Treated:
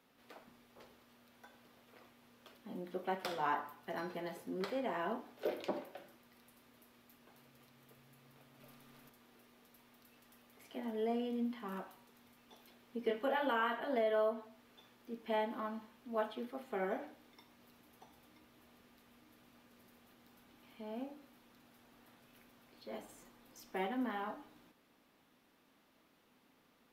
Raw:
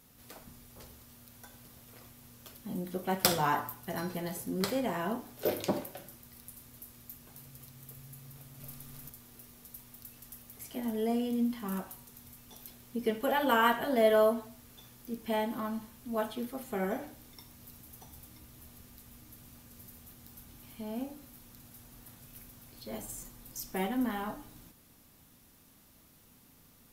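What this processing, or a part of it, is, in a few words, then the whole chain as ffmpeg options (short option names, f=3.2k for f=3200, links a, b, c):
DJ mixer with the lows and highs turned down: -filter_complex "[0:a]asettb=1/sr,asplit=3[a][b][c];[a]atrim=end=13.024[d];[b]atrim=start=13.02:end=13.8,asetpts=PTS-STARTPTS,afade=t=in:d=0.004:c=qsin,afade=t=out:st=0.776:d=0.004:c=qsin,asplit=2[e][f];[f]adelay=26,volume=-5dB[g];[e][g]amix=inputs=2:normalize=0,atrim=end_sample=34398[h];[c]atrim=start=13.796[i];[d][h]acrossfade=d=0.004:c1=hsin:c2=qsin[j];[j][i]acrossfade=d=0.004:c1=qsin:c2=hsin,acrossover=split=230 3900:gain=0.112 1 0.141[k][l][m];[k][l][m]amix=inputs=3:normalize=0,alimiter=limit=-22dB:level=0:latency=1:release=347,volume=-3dB"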